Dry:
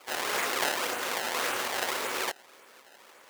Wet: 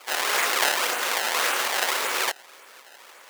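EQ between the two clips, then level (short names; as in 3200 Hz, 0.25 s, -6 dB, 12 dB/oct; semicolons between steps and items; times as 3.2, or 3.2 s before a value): HPF 700 Hz 6 dB/oct; +7.5 dB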